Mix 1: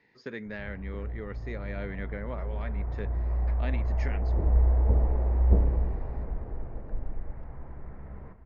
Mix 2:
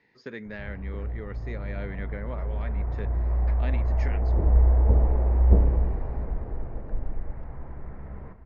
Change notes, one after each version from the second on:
background +3.5 dB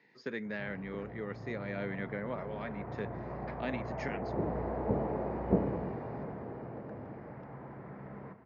master: add HPF 130 Hz 24 dB/oct

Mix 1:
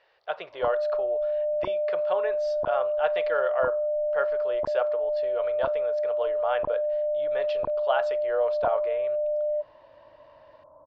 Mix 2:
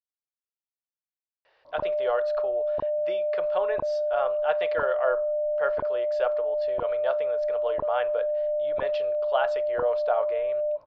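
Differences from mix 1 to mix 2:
speech: entry +1.45 s; background: entry +1.15 s

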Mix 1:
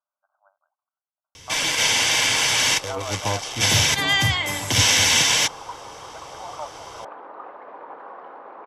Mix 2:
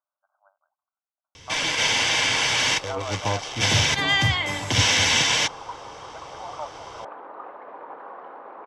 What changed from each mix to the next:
master: add air absorption 78 m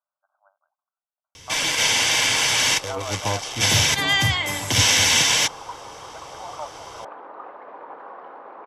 master: remove air absorption 78 m

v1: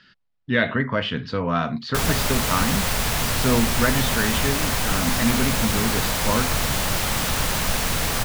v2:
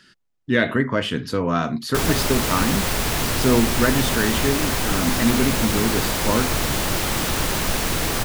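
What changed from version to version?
speech: remove LPF 4600 Hz 24 dB/oct; master: add bell 340 Hz +8.5 dB 0.66 oct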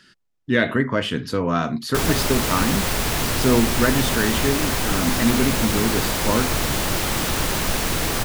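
none

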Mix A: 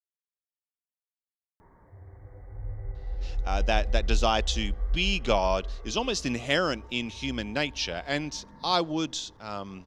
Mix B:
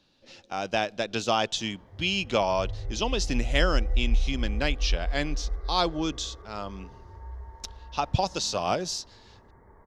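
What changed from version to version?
speech: entry -2.95 s; reverb: on, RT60 0.60 s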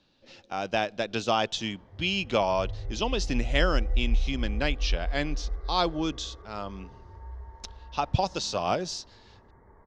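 background: send -8.5 dB; master: add air absorption 64 m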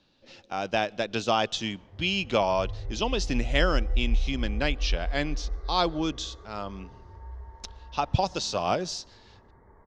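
speech: send on

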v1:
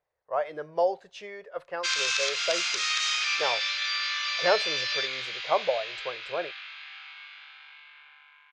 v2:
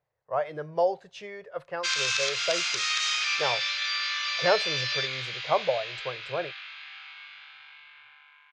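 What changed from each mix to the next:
speech: add bell 130 Hz +14.5 dB 0.75 oct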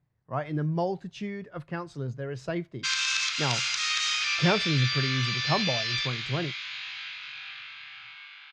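background: entry +1.00 s; master: add resonant low shelf 360 Hz +12.5 dB, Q 3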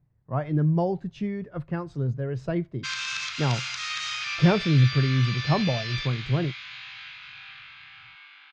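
master: add tilt -2.5 dB/oct

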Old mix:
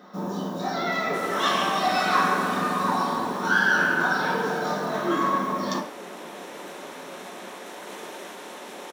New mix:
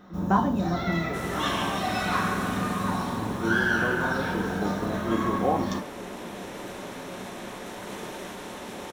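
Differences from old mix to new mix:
speech: unmuted; first sound: send -8.5 dB; master: remove HPF 320 Hz 12 dB/oct

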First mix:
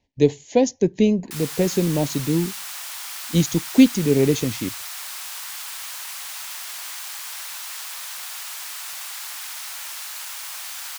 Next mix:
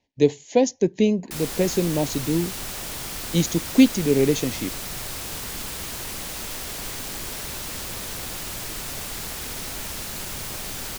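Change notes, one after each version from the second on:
background: remove HPF 890 Hz 24 dB/oct; master: add low shelf 120 Hz -9.5 dB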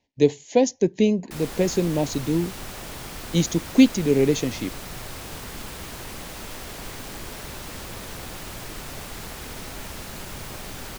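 background: add high shelf 3000 Hz -8.5 dB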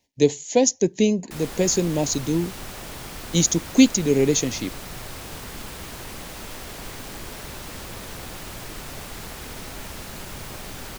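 speech: remove Bessel low-pass 3300 Hz, order 2

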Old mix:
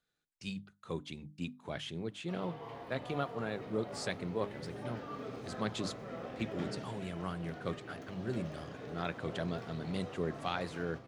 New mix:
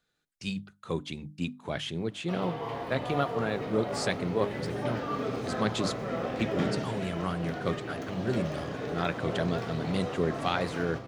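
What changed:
speech +7.0 dB; background +11.0 dB

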